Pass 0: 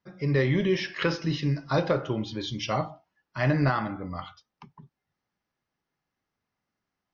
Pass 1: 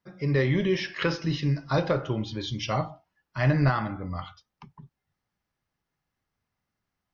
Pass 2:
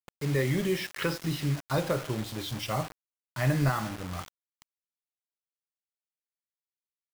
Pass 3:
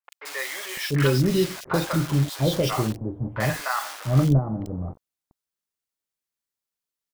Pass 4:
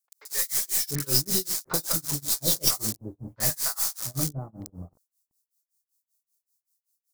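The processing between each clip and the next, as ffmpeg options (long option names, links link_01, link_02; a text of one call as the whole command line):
ffmpeg -i in.wav -af "asubboost=boost=2:cutoff=160" out.wav
ffmpeg -i in.wav -af "acrusher=bits=5:mix=0:aa=0.000001,volume=-3.5dB" out.wav
ffmpeg -i in.wav -filter_complex "[0:a]acrossover=split=690|2400[link_01][link_02][link_03];[link_03]adelay=40[link_04];[link_01]adelay=690[link_05];[link_05][link_02][link_04]amix=inputs=3:normalize=0,volume=7.5dB" out.wav
ffmpeg -i in.wav -af "tremolo=f=5.2:d=0.98,aexciter=amount=10.3:drive=5.6:freq=4300,aeval=exprs='1.12*(cos(1*acos(clip(val(0)/1.12,-1,1)))-cos(1*PI/2))+0.501*(cos(2*acos(clip(val(0)/1.12,-1,1)))-cos(2*PI/2))':channel_layout=same,volume=-7.5dB" out.wav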